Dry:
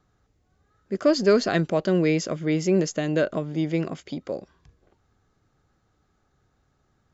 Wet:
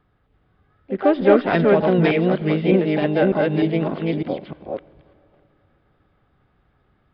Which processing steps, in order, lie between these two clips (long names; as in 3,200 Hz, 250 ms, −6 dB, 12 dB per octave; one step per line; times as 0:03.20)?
delay that plays each chunk backwards 302 ms, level −1 dB
downsampling to 8,000 Hz
on a send at −21 dB: convolution reverb RT60 2.9 s, pre-delay 14 ms
on the sum: pitch-shifted copies added +5 semitones −9 dB
level +2.5 dB